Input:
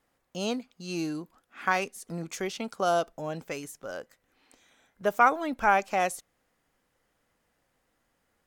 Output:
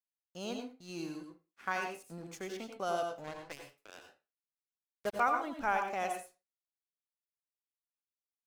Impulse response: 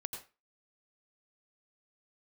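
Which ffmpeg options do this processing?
-filter_complex "[0:a]aeval=exprs='sgn(val(0))*max(abs(val(0))-0.00376,0)':c=same,agate=range=-33dB:threshold=-50dB:ratio=3:detection=peak,asettb=1/sr,asplit=3[a][b][c];[a]atrim=end=3.244[d];[b]atrim=start=3.24:end=5.2,asetpts=PTS-STARTPTS,afade=t=in:d=0.004:c=qsin,afade=t=out:st=1.956:d=0.004:c=qsin,acrusher=bits=4:mix=0:aa=0.5[e];[c]atrim=start=5.196[f];[d][e]acrossfade=d=0.004:c1=hsin:c2=qsin[g];[g][f]acrossfade=d=0.004:c1=qsin:c2=hsin[h];[1:a]atrim=start_sample=2205[i];[h][i]afir=irnorm=-1:irlink=0,volume=-7dB"

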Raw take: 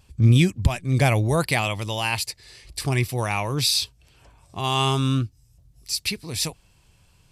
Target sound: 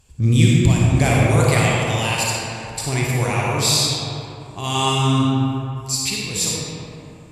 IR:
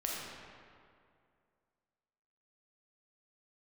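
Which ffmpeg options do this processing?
-filter_complex "[0:a]equalizer=f=7.3k:t=o:w=0.26:g=13[a];[1:a]atrim=start_sample=2205,asetrate=33075,aresample=44100[b];[a][b]afir=irnorm=-1:irlink=0,volume=-1dB"

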